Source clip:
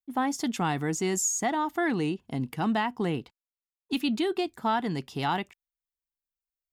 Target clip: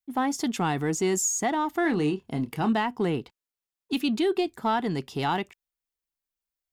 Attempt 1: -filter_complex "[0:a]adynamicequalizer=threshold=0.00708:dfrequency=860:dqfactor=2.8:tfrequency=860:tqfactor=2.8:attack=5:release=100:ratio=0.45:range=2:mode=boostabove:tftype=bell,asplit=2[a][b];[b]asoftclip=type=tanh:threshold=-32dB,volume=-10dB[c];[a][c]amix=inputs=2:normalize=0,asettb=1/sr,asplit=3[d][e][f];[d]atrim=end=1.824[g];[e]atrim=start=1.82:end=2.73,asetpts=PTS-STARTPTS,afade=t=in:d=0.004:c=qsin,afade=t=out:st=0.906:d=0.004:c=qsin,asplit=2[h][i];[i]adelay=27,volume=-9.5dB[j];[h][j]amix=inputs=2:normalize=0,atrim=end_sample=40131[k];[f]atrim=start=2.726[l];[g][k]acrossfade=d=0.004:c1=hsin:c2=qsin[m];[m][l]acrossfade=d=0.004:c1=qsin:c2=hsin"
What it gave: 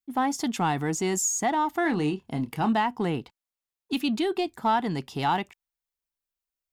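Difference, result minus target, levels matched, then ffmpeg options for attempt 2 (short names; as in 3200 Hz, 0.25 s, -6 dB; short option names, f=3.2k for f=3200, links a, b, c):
1000 Hz band +2.5 dB
-filter_complex "[0:a]adynamicequalizer=threshold=0.00708:dfrequency=410:dqfactor=2.8:tfrequency=410:tqfactor=2.8:attack=5:release=100:ratio=0.45:range=2:mode=boostabove:tftype=bell,asplit=2[a][b];[b]asoftclip=type=tanh:threshold=-32dB,volume=-10dB[c];[a][c]amix=inputs=2:normalize=0,asettb=1/sr,asplit=3[d][e][f];[d]atrim=end=1.824[g];[e]atrim=start=1.82:end=2.73,asetpts=PTS-STARTPTS,afade=t=in:d=0.004:c=qsin,afade=t=out:st=0.906:d=0.004:c=qsin,asplit=2[h][i];[i]adelay=27,volume=-9.5dB[j];[h][j]amix=inputs=2:normalize=0,atrim=end_sample=40131[k];[f]atrim=start=2.726[l];[g][k]acrossfade=d=0.004:c1=hsin:c2=qsin[m];[m][l]acrossfade=d=0.004:c1=qsin:c2=hsin"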